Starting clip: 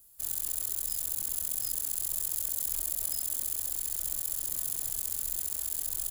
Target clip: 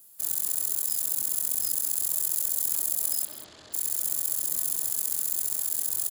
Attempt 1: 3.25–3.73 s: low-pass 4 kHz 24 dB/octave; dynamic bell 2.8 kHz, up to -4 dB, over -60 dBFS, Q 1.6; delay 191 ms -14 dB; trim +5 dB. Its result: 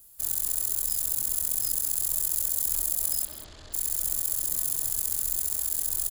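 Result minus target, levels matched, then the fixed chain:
125 Hz band +8.5 dB
3.25–3.73 s: low-pass 4 kHz 24 dB/octave; dynamic bell 2.8 kHz, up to -4 dB, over -60 dBFS, Q 1.6; high-pass 160 Hz 12 dB/octave; delay 191 ms -14 dB; trim +5 dB

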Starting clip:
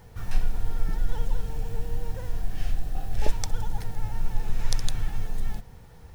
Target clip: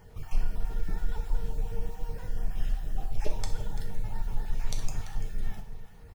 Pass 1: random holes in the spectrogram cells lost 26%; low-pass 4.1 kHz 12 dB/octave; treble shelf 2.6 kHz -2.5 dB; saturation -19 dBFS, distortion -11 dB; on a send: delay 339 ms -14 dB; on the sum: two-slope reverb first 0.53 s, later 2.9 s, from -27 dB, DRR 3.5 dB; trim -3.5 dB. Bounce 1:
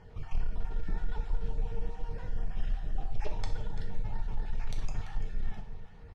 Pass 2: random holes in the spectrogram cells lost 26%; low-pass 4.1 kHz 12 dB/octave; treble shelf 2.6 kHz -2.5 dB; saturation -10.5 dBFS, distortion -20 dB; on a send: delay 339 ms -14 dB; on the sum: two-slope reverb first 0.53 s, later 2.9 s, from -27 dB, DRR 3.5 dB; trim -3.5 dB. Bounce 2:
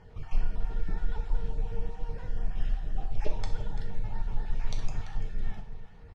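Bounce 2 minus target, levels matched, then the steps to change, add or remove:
4 kHz band -2.5 dB
remove: low-pass 4.1 kHz 12 dB/octave

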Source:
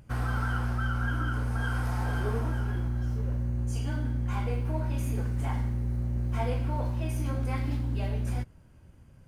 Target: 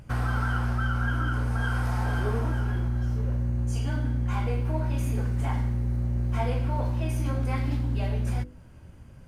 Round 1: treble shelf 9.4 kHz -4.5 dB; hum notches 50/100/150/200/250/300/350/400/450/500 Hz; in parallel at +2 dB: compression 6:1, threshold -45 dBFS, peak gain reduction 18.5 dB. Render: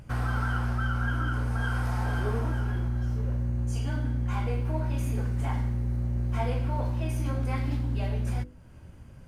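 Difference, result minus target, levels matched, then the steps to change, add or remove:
compression: peak gain reduction +7 dB
change: compression 6:1, threshold -36.5 dBFS, peak gain reduction 11.5 dB

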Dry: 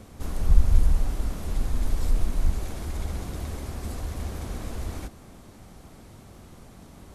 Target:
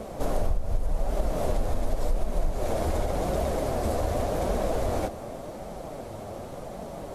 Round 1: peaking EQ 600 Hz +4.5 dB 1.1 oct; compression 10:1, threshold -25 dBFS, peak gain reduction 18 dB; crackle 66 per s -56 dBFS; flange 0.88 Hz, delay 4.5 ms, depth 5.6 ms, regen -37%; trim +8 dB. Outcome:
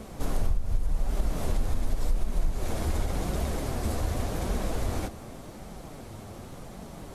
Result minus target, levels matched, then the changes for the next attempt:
500 Hz band -7.0 dB
change: peaking EQ 600 Hz +16.5 dB 1.1 oct

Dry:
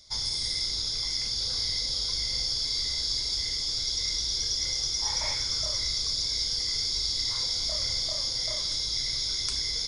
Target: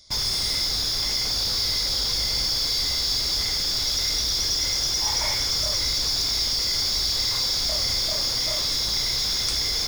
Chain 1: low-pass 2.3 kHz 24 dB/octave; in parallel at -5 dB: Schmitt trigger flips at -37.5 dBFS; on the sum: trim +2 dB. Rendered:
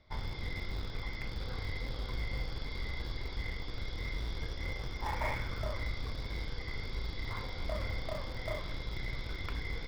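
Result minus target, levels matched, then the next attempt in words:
2 kHz band +11.5 dB
in parallel at -5 dB: Schmitt trigger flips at -37.5 dBFS; on the sum: trim +2 dB

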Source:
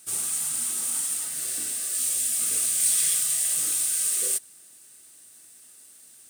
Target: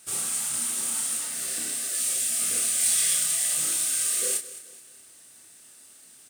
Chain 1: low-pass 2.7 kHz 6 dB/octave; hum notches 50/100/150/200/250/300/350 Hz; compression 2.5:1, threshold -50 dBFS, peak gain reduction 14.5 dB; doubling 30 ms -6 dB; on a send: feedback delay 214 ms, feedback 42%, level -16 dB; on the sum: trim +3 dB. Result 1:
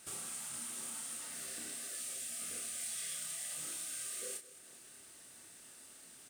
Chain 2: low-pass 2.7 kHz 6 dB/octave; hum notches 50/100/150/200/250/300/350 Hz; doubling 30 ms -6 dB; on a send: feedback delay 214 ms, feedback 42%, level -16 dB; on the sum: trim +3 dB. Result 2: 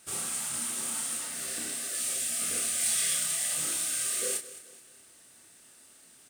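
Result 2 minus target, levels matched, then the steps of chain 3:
2 kHz band +3.5 dB
low-pass 5.7 kHz 6 dB/octave; hum notches 50/100/150/200/250/300/350 Hz; doubling 30 ms -6 dB; on a send: feedback delay 214 ms, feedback 42%, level -16 dB; on the sum: trim +3 dB

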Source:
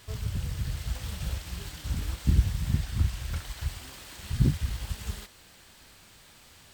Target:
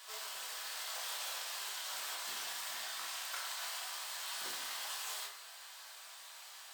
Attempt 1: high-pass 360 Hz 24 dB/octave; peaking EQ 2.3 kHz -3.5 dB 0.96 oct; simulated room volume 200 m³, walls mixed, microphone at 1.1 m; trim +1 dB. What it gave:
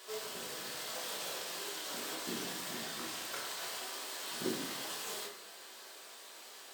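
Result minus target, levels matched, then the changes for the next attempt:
500 Hz band +11.0 dB
change: high-pass 740 Hz 24 dB/octave

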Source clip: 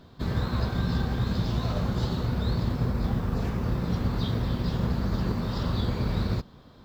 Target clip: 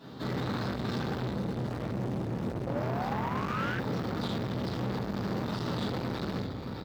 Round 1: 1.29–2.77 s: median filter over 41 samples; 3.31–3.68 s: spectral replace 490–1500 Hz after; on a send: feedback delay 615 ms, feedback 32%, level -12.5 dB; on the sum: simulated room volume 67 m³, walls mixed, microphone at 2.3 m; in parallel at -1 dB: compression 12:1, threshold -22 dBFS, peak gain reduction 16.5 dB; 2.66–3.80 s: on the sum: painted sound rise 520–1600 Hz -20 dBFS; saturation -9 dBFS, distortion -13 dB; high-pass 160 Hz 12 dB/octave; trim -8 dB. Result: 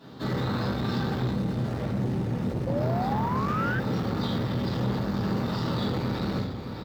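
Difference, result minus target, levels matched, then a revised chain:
saturation: distortion -7 dB
1.29–2.77 s: median filter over 41 samples; 3.31–3.68 s: spectral replace 490–1500 Hz after; on a send: feedback delay 615 ms, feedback 32%, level -12.5 dB; on the sum: simulated room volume 67 m³, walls mixed, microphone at 2.3 m; in parallel at -1 dB: compression 12:1, threshold -22 dBFS, peak gain reduction 16.5 dB; 2.66–3.80 s: on the sum: painted sound rise 520–1600 Hz -20 dBFS; saturation -18 dBFS, distortion -6 dB; high-pass 160 Hz 12 dB/octave; trim -8 dB

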